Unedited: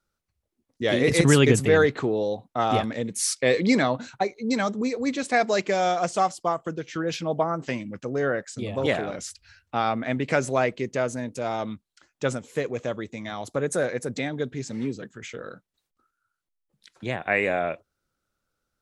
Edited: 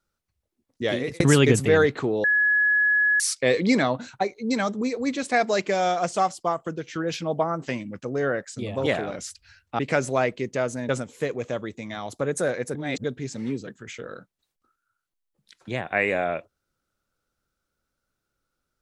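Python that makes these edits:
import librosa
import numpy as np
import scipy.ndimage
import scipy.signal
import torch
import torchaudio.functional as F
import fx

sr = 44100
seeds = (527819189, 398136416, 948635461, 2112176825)

y = fx.edit(x, sr, fx.fade_out_span(start_s=0.82, length_s=0.38),
    fx.bleep(start_s=2.24, length_s=0.96, hz=1690.0, db=-17.0),
    fx.cut(start_s=9.79, length_s=0.4),
    fx.cut(start_s=11.29, length_s=0.95),
    fx.reverse_span(start_s=14.1, length_s=0.29), tone=tone)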